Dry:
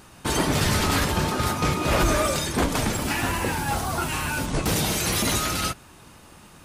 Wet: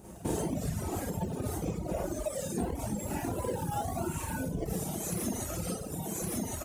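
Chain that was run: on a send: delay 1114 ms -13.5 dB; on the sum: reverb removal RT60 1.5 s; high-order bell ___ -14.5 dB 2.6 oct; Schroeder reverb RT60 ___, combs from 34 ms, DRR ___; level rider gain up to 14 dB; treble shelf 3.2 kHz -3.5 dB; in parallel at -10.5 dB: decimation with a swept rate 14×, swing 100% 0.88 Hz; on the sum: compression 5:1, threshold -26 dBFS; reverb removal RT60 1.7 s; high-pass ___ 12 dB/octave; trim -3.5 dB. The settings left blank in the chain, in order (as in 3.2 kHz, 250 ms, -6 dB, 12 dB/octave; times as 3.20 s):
2.3 kHz, 0.77 s, -8 dB, 44 Hz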